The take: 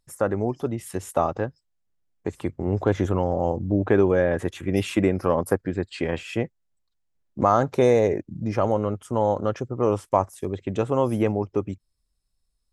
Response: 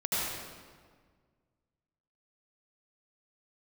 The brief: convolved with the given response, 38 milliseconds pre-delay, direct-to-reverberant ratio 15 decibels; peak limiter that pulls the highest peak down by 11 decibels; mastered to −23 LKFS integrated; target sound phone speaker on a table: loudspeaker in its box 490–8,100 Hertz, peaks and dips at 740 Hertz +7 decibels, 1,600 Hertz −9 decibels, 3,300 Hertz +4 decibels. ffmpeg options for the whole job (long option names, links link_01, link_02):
-filter_complex "[0:a]alimiter=limit=-17dB:level=0:latency=1,asplit=2[link_01][link_02];[1:a]atrim=start_sample=2205,adelay=38[link_03];[link_02][link_03]afir=irnorm=-1:irlink=0,volume=-24dB[link_04];[link_01][link_04]amix=inputs=2:normalize=0,highpass=frequency=490:width=0.5412,highpass=frequency=490:width=1.3066,equalizer=frequency=740:width_type=q:width=4:gain=7,equalizer=frequency=1600:width_type=q:width=4:gain=-9,equalizer=frequency=3300:width_type=q:width=4:gain=4,lowpass=frequency=8100:width=0.5412,lowpass=frequency=8100:width=1.3066,volume=10dB"